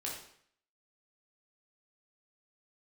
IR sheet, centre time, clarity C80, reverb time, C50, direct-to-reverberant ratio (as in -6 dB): 42 ms, 7.0 dB, 0.60 s, 3.0 dB, -4.0 dB